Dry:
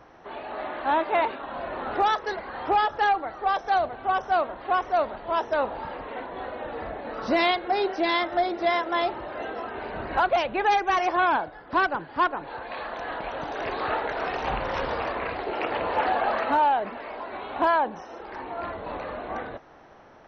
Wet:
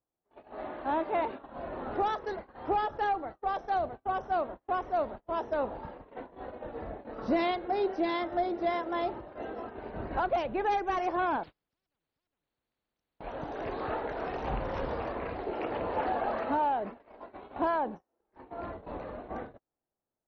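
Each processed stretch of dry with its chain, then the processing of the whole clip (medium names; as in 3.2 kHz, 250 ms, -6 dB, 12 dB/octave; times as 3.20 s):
11.43–13.20 s: compression 3:1, threshold -36 dBFS + spectrum-flattening compressor 10:1
whole clip: gate -34 dBFS, range -36 dB; tilt shelf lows +6.5 dB, about 740 Hz; trim -6.5 dB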